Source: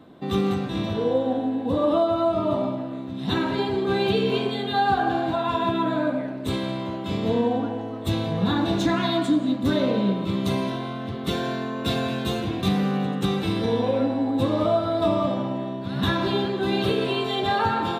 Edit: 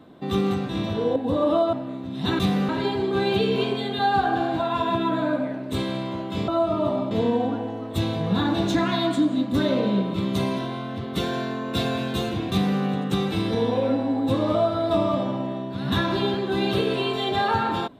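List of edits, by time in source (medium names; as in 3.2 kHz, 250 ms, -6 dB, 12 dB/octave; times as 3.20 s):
1.16–1.57 s: delete
2.14–2.77 s: move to 7.22 s
12.62–12.92 s: copy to 3.43 s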